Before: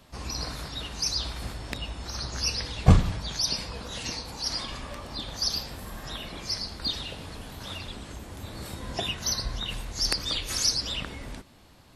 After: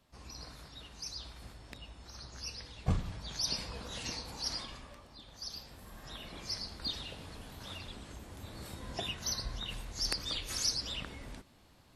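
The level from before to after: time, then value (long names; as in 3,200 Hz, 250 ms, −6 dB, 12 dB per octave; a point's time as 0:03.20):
0:02.92 −14.5 dB
0:03.51 −6 dB
0:04.47 −6 dB
0:05.17 −18 dB
0:06.39 −7.5 dB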